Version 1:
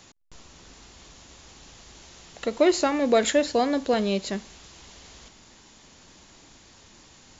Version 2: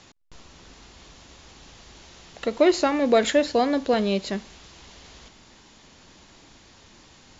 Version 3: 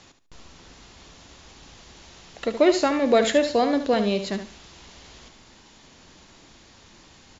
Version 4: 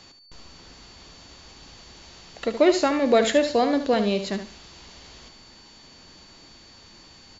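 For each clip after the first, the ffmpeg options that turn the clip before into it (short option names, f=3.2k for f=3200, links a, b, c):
-af "lowpass=5.8k,volume=1.5dB"
-af "aecho=1:1:73|146|219:0.316|0.0696|0.0153"
-af "aeval=exprs='val(0)+0.00282*sin(2*PI*4500*n/s)':c=same"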